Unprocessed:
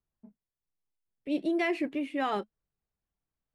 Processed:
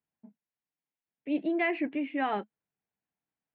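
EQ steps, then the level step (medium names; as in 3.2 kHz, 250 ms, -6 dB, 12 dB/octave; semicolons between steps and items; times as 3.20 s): cabinet simulation 200–2700 Hz, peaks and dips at 380 Hz -6 dB, 550 Hz -5 dB, 1.2 kHz -7 dB; +3.0 dB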